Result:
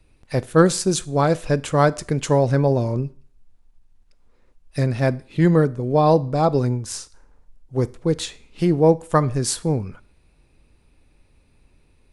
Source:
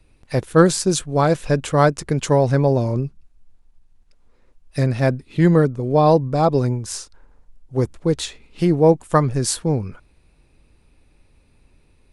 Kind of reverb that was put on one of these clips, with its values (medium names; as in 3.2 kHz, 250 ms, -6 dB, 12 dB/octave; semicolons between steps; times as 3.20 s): Schroeder reverb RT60 0.45 s, combs from 25 ms, DRR 19 dB; trim -1.5 dB